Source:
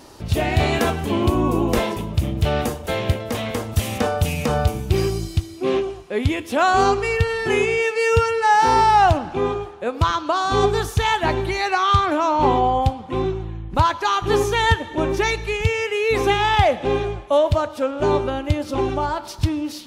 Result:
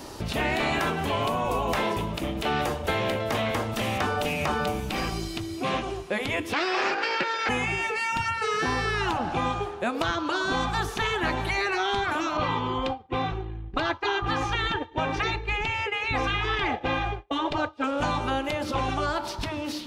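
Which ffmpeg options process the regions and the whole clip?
ffmpeg -i in.wav -filter_complex "[0:a]asettb=1/sr,asplit=3[link_01][link_02][link_03];[link_01]atrim=end=6.534[link_04];[link_02]atrim=start=6.53:end=7.49,asetpts=PTS-STARTPTS,afade=type=in:duration=0.004:curve=qsin,afade=type=out:start_time=0.956:duration=0.004:curve=qsin,aeval=exprs='abs(val(0))':channel_layout=same,highpass=470,equalizer=frequency=610:width_type=q:width=4:gain=-6,equalizer=frequency=1600:width_type=q:width=4:gain=8,equalizer=frequency=2500:width_type=q:width=4:gain=9,equalizer=frequency=4800:width_type=q:width=4:gain=8,lowpass=frequency=6700:width=0.5412,lowpass=frequency=6700:width=1.3066[link_05];[link_03]atrim=start=7.486[link_06];[link_04][link_05]acrossfade=duration=0.004:curve1=hsin:curve2=qsin[link_07];[link_07][link_06]acrossfade=duration=0.004:curve1=qsin:curve2=hsin,asettb=1/sr,asplit=3[link_08][link_09][link_10];[link_08]atrim=end=12.374[link_11];[link_09]atrim=start=12.37:end=17.84,asetpts=PTS-STARTPTS,afade=type=in:duration=0.004:curve=qsin,afade=type=out:start_time=5.466:duration=0.004:curve=qsin,agate=range=-33dB:threshold=-23dB:ratio=3:release=100:detection=peak,lowpass=3700,aecho=1:1:2.5:0.52,atrim=end_sample=241227[link_12];[link_10]atrim=start=17.836[link_13];[link_11][link_12]acrossfade=duration=0.004:curve1=hsin:curve2=qsin[link_14];[link_14][link_13]acrossfade=duration=0.004:curve1=qsin:curve2=hsin,afftfilt=real='re*lt(hypot(re,im),0.447)':imag='im*lt(hypot(re,im),0.447)':win_size=1024:overlap=0.75,acrossover=split=630|2300|4600[link_15][link_16][link_17][link_18];[link_15]acompressor=threshold=-33dB:ratio=4[link_19];[link_16]acompressor=threshold=-31dB:ratio=4[link_20];[link_17]acompressor=threshold=-43dB:ratio=4[link_21];[link_18]acompressor=threshold=-51dB:ratio=4[link_22];[link_19][link_20][link_21][link_22]amix=inputs=4:normalize=0,volume=4dB" out.wav

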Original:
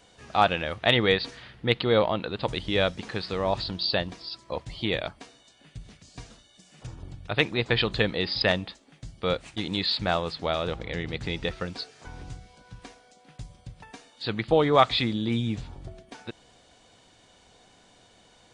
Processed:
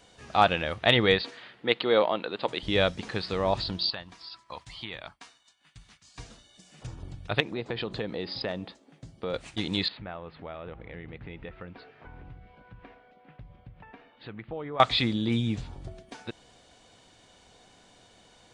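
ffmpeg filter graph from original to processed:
ffmpeg -i in.wav -filter_complex "[0:a]asettb=1/sr,asplit=3[link_01][link_02][link_03];[link_01]atrim=end=1.214[link_04];[link_02]atrim=start=1.21:end=2.63,asetpts=PTS-STARTPTS,afade=type=in:duration=0.004:curve=qsin,afade=type=out:start_time=1.416:duration=0.004:curve=qsin,highpass=280,lowpass=7500,equalizer=frequency=5700:width=2.2:gain=-5.5[link_05];[link_03]atrim=start=2.626[link_06];[link_04][link_05]acrossfade=duration=0.004:curve1=hsin:curve2=qsin[link_07];[link_07][link_06]acrossfade=duration=0.004:curve1=qsin:curve2=hsin,asettb=1/sr,asplit=3[link_08][link_09][link_10];[link_08]atrim=end=3.904[link_11];[link_09]atrim=start=3.9:end=6.19,asetpts=PTS-STARTPTS,afade=type=in:duration=0.004:curve=qsin,afade=type=out:start_time=2.286:duration=0.004:curve=qsin,lowshelf=frequency=730:width_type=q:width=1.5:gain=-10,acrossover=split=720|2700[link_12][link_13][link_14];[link_12]acompressor=threshold=-41dB:ratio=4[link_15];[link_13]acompressor=threshold=-43dB:ratio=4[link_16];[link_14]acompressor=threshold=-45dB:ratio=4[link_17];[link_15][link_16][link_17]amix=inputs=3:normalize=0,agate=range=-33dB:threshold=-53dB:ratio=3:release=100:detection=peak[link_18];[link_10]atrim=start=6.186[link_19];[link_11][link_18]acrossfade=duration=0.004:curve1=hsin:curve2=qsin[link_20];[link_20][link_19]acrossfade=duration=0.004:curve1=qsin:curve2=hsin,asettb=1/sr,asplit=3[link_21][link_22][link_23];[link_21]atrim=end=7.404[link_24];[link_22]atrim=start=7.4:end=9.34,asetpts=PTS-STARTPTS,afade=type=in:duration=0.004:curve=qsin,afade=type=out:start_time=1.936:duration=0.004:curve=qsin,highpass=frequency=390:poles=1,tiltshelf=frequency=840:gain=7.5,acompressor=threshold=-30dB:ratio=3:attack=3.2:release=140:knee=1:detection=peak[link_25];[link_23]atrim=start=9.336[link_26];[link_24][link_25]acrossfade=duration=0.004:curve1=hsin:curve2=qsin[link_27];[link_27][link_26]acrossfade=duration=0.004:curve1=qsin:curve2=hsin,asettb=1/sr,asplit=3[link_28][link_29][link_30];[link_28]atrim=end=9.884[link_31];[link_29]atrim=start=9.88:end=14.8,asetpts=PTS-STARTPTS,afade=type=in:duration=0.004:curve=qsin,afade=type=out:start_time=4.916:duration=0.004:curve=qsin,lowpass=frequency=2600:width=0.5412,lowpass=frequency=2600:width=1.3066,acompressor=threshold=-46dB:ratio=2:attack=3.2:release=140:knee=1:detection=peak[link_32];[link_30]atrim=start=14.796[link_33];[link_31][link_32]acrossfade=duration=0.004:curve1=hsin:curve2=qsin[link_34];[link_34][link_33]acrossfade=duration=0.004:curve1=qsin:curve2=hsin" out.wav

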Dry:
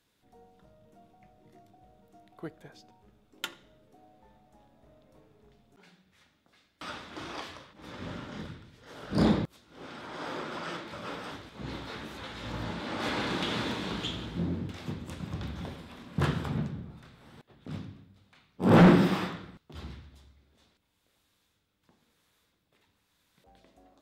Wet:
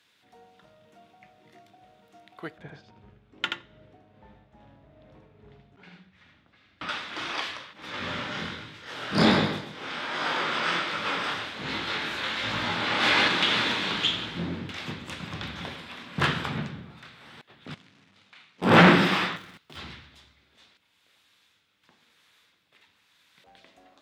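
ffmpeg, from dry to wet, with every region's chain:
ffmpeg -i in.wav -filter_complex "[0:a]asettb=1/sr,asplit=3[link_01][link_02][link_03];[link_01]atrim=end=2.584[link_04];[link_02]atrim=start=2.58:end=6.89,asetpts=PTS-STARTPTS,afade=type=in:duration=0.004:curve=qsin,afade=type=out:start_time=4.306:duration=0.004:curve=qsin,aemphasis=mode=reproduction:type=riaa,tremolo=f=2.4:d=0.47,aecho=1:1:79:0.631,atrim=end_sample=190071[link_05];[link_03]atrim=start=6.886[link_06];[link_04][link_05]acrossfade=duration=0.004:curve1=hsin:curve2=qsin[link_07];[link_07][link_06]acrossfade=duration=0.004:curve1=qsin:curve2=hsin,asettb=1/sr,asplit=3[link_08][link_09][link_10];[link_08]atrim=end=7.924[link_11];[link_09]atrim=start=7.92:end=13.28,asetpts=PTS-STARTPTS,afade=type=in:duration=0.004:curve=qsin,afade=type=out:start_time=5.356:duration=0.004:curve=qsin,aecho=1:1:131|262|393|524:0.447|0.156|0.0547|0.0192,atrim=end_sample=236376,acontrast=31,flanger=delay=19:depth=7.5:speed=1.3[link_12];[link_10]atrim=start=13.276[link_13];[link_11][link_12]acrossfade=duration=0.004:curve1=hsin:curve2=qsin[link_14];[link_14][link_13]acrossfade=duration=0.004:curve1=qsin:curve2=hsin,asettb=1/sr,asplit=3[link_15][link_16][link_17];[link_15]atrim=end=17.744[link_18];[link_16]atrim=start=17.74:end=18.62,asetpts=PTS-STARTPTS,afade=type=in:duration=0.004:curve=qsin,afade=type=out:start_time=0.876:duration=0.004:curve=qsin,acompressor=threshold=-56dB:ratio=4:attack=3.2:release=140:knee=1:detection=peak,acrusher=bits=2:mode=log:mix=0:aa=0.000001,highpass=130,lowpass=6900[link_19];[link_17]atrim=start=18.616[link_20];[link_18][link_19]acrossfade=duration=0.004:curve1=hsin:curve2=qsin[link_21];[link_21][link_20]acrossfade=duration=0.004:curve1=qsin:curve2=hsin,asettb=1/sr,asplit=3[link_22][link_23][link_24];[link_22]atrim=end=19.364[link_25];[link_23]atrim=start=19.36:end=19.77,asetpts=PTS-STARTPTS,afade=type=in:duration=0.004:curve=qsin,afade=type=out:start_time=0.406:duration=0.004:curve=qsin,acrossover=split=260|1900[link_26][link_27][link_28];[link_26]acompressor=threshold=-50dB:ratio=4[link_29];[link_27]acompressor=threshold=-53dB:ratio=4[link_30];[link_28]acompressor=threshold=-58dB:ratio=4[link_31];[link_29][link_30][link_31]amix=inputs=3:normalize=0,acrusher=bits=3:mode=log:mix=0:aa=0.000001[link_32];[link_24]atrim=start=19.766[link_33];[link_25][link_32]acrossfade=duration=0.004:curve1=hsin:curve2=qsin[link_34];[link_34][link_33]acrossfade=duration=0.004:curve1=qsin:curve2=hsin,highpass=90,equalizer=frequency=2500:width_type=o:width=2.9:gain=13.5,volume=-1dB" out.wav

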